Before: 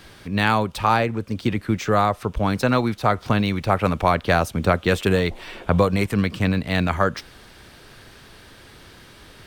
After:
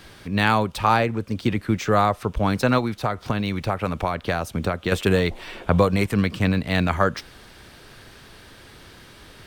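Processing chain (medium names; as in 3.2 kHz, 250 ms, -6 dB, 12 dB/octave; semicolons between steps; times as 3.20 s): 2.78–4.92 s: compression, threshold -20 dBFS, peak gain reduction 8.5 dB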